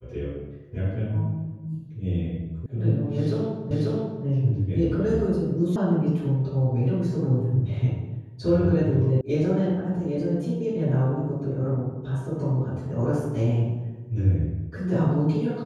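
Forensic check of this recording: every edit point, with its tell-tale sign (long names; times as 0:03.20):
0:02.66: cut off before it has died away
0:03.71: the same again, the last 0.54 s
0:05.76: cut off before it has died away
0:09.21: cut off before it has died away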